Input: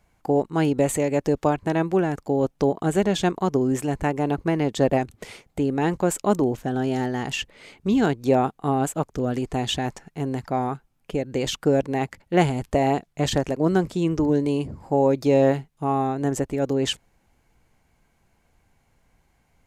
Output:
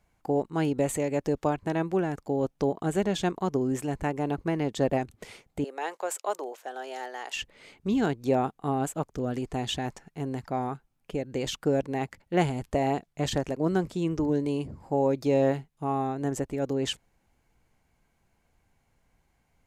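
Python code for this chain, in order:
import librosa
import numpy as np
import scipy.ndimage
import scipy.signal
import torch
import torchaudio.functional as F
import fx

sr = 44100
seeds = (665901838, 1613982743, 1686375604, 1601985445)

y = fx.highpass(x, sr, hz=500.0, slope=24, at=(5.64, 7.36))
y = y * librosa.db_to_amplitude(-5.5)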